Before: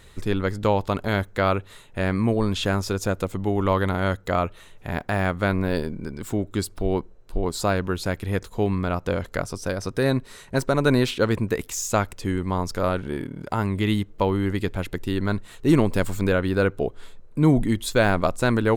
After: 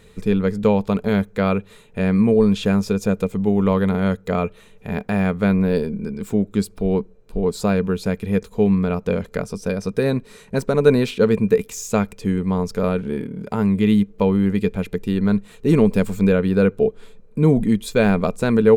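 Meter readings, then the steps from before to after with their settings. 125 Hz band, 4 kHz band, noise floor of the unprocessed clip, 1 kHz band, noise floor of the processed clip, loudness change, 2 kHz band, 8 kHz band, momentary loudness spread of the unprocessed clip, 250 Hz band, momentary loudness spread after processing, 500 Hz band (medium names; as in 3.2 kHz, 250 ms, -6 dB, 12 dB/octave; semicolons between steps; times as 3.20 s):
+3.0 dB, -2.5 dB, -48 dBFS, -2.0 dB, -48 dBFS, +4.5 dB, -1.5 dB, -2.5 dB, 8 LU, +6.5 dB, 9 LU, +5.0 dB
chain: small resonant body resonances 200/440/2400 Hz, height 14 dB, ringing for 65 ms; trim -2.5 dB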